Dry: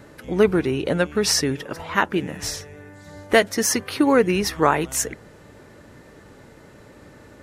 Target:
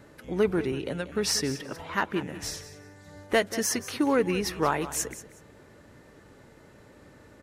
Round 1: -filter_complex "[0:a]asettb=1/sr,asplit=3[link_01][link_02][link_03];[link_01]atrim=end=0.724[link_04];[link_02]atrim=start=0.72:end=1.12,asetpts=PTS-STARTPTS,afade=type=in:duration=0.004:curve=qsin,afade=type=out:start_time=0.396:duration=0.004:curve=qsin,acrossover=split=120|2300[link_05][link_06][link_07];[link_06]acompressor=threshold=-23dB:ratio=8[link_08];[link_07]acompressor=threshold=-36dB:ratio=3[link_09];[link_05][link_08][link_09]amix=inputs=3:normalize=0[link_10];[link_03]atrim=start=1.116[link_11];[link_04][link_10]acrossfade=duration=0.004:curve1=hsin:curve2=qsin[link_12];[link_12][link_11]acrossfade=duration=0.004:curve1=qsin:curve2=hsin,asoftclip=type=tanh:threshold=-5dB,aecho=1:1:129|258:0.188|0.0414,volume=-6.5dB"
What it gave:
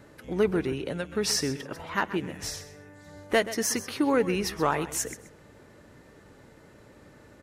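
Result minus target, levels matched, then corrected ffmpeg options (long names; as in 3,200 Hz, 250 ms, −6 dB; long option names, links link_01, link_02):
echo 57 ms early
-filter_complex "[0:a]asettb=1/sr,asplit=3[link_01][link_02][link_03];[link_01]atrim=end=0.724[link_04];[link_02]atrim=start=0.72:end=1.12,asetpts=PTS-STARTPTS,afade=type=in:duration=0.004:curve=qsin,afade=type=out:start_time=0.396:duration=0.004:curve=qsin,acrossover=split=120|2300[link_05][link_06][link_07];[link_06]acompressor=threshold=-23dB:ratio=8[link_08];[link_07]acompressor=threshold=-36dB:ratio=3[link_09];[link_05][link_08][link_09]amix=inputs=3:normalize=0[link_10];[link_03]atrim=start=1.116[link_11];[link_04][link_10]acrossfade=duration=0.004:curve1=hsin:curve2=qsin[link_12];[link_12][link_11]acrossfade=duration=0.004:curve1=qsin:curve2=hsin,asoftclip=type=tanh:threshold=-5dB,aecho=1:1:186|372:0.188|0.0414,volume=-6.5dB"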